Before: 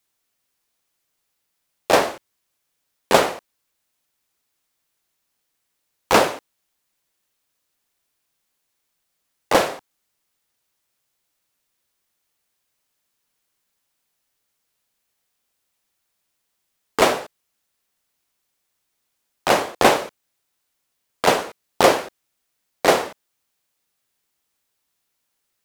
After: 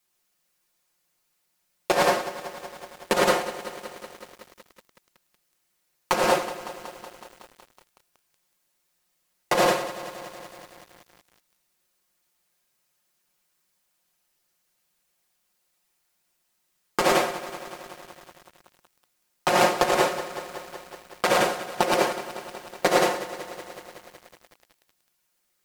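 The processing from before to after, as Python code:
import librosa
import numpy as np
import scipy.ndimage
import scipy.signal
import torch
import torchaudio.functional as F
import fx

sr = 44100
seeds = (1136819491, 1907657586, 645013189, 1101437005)

y = fx.peak_eq(x, sr, hz=3400.0, db=-2.0, octaves=0.4)
y = y + 10.0 ** (-3.0 / 20.0) * np.pad(y, (int(108 * sr / 1000.0), 0))[:len(y)]
y = fx.over_compress(y, sr, threshold_db=-17.0, ratio=-0.5)
y = y + 0.78 * np.pad(y, (int(5.6 * sr / 1000.0), 0))[:len(y)]
y = fx.echo_crushed(y, sr, ms=186, feedback_pct=80, bits=6, wet_db=-14.0)
y = y * librosa.db_to_amplitude(-4.5)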